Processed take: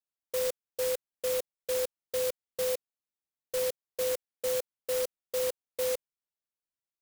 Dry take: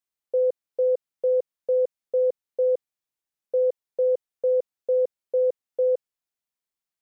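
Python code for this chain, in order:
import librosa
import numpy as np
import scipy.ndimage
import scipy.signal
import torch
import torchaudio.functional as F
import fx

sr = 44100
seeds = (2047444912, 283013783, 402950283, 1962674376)

y = fx.clock_jitter(x, sr, seeds[0], jitter_ms=0.14)
y = y * 10.0 ** (-8.5 / 20.0)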